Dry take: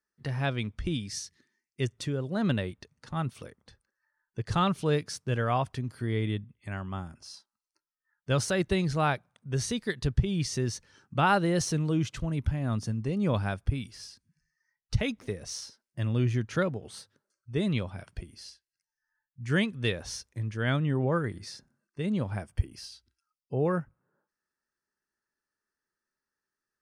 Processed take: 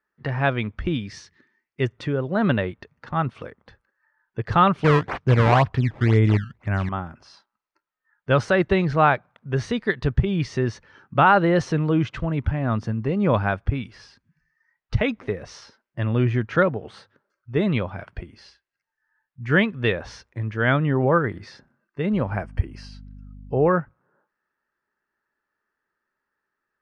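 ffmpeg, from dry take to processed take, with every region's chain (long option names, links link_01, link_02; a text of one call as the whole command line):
ffmpeg -i in.wav -filter_complex "[0:a]asettb=1/sr,asplit=3[link_01][link_02][link_03];[link_01]atrim=end=4.844[link_04];[link_02]atrim=start=4.84:end=6.89,asetpts=PTS-STARTPTS,afade=type=in:duration=0.004:curve=qsin,afade=type=out:start_time=2.046:duration=0.004:curve=qsin,lowshelf=frequency=180:gain=11.5,acrusher=samples=17:mix=1:aa=0.000001:lfo=1:lforange=27.2:lforate=2[link_05];[link_03]atrim=start=6.886[link_06];[link_04][link_05]acrossfade=duration=0.004:curve1=hsin:curve2=qsin[link_07];[link_07][link_06]acrossfade=duration=0.004:curve1=qsin:curve2=hsin,asettb=1/sr,asplit=3[link_08][link_09][link_10];[link_08]atrim=end=22.134[link_11];[link_09]atrim=start=22.13:end=23.69,asetpts=PTS-STARTPTS,afade=type=in:duration=0.004:curve=qsin,afade=type=out:start_time=1.556:duration=0.004:curve=qsin,highshelf=frequency=7300:gain=6.5,bandreject=frequency=3500:width=6,aeval=exprs='val(0)+0.00562*(sin(2*PI*50*n/s)+sin(2*PI*2*50*n/s)/2+sin(2*PI*3*50*n/s)/3+sin(2*PI*4*50*n/s)/4+sin(2*PI*5*50*n/s)/5)':channel_layout=same[link_12];[link_10]atrim=start=23.686[link_13];[link_11][link_12]acrossfade=duration=0.004:curve1=hsin:curve2=qsin[link_14];[link_14][link_13]acrossfade=duration=0.004:curve1=qsin:curve2=hsin,lowpass=1900,lowshelf=frequency=430:gain=-8.5,alimiter=level_in=18dB:limit=-1dB:release=50:level=0:latency=1,volume=-5dB" out.wav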